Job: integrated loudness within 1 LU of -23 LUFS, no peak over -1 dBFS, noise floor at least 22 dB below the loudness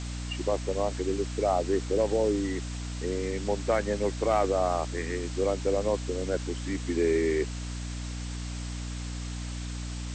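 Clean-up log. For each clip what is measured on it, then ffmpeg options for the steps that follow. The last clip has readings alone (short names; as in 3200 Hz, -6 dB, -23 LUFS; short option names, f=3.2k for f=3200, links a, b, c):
hum 60 Hz; harmonics up to 300 Hz; hum level -33 dBFS; noise floor -36 dBFS; noise floor target -52 dBFS; loudness -30.0 LUFS; peak -14.5 dBFS; loudness target -23.0 LUFS
-> -af "bandreject=f=60:t=h:w=6,bandreject=f=120:t=h:w=6,bandreject=f=180:t=h:w=6,bandreject=f=240:t=h:w=6,bandreject=f=300:t=h:w=6"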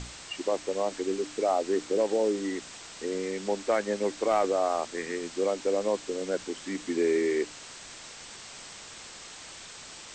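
hum none; noise floor -46 dBFS; noise floor target -52 dBFS
-> -af "afftdn=nr=6:nf=-46"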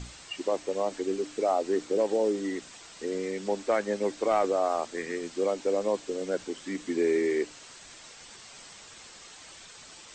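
noise floor -49 dBFS; noise floor target -52 dBFS
-> -af "afftdn=nr=6:nf=-49"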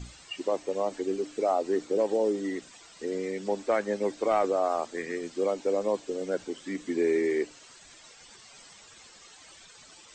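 noise floor -53 dBFS; loudness -29.5 LUFS; peak -15.5 dBFS; loudness target -23.0 LUFS
-> -af "volume=6.5dB"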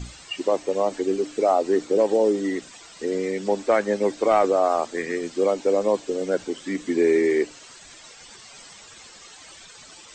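loudness -23.0 LUFS; peak -9.0 dBFS; noise floor -46 dBFS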